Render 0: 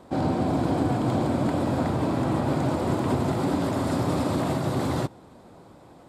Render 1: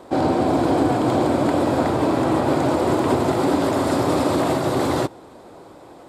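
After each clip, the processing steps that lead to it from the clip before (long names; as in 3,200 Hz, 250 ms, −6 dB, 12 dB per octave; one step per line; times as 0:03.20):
low shelf with overshoot 260 Hz −6 dB, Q 1.5
level +7 dB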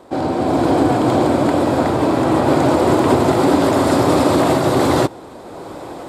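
automatic gain control gain up to 14 dB
level −1 dB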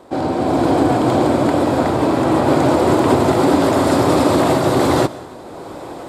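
convolution reverb RT60 1.1 s, pre-delay 93 ms, DRR 17.5 dB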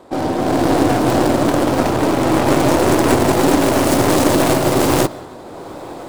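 stylus tracing distortion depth 0.48 ms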